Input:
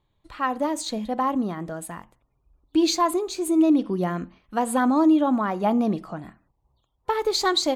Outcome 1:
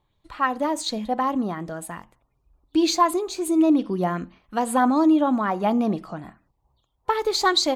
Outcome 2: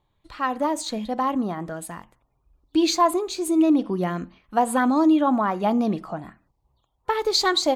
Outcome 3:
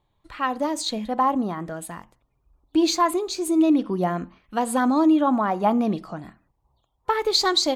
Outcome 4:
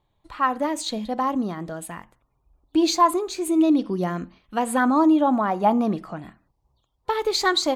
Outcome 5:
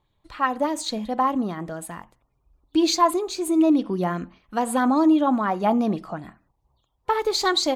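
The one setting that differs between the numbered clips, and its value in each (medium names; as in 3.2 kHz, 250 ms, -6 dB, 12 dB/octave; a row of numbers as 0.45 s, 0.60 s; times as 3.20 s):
sweeping bell, rate: 2.7 Hz, 1.3 Hz, 0.73 Hz, 0.37 Hz, 4.9 Hz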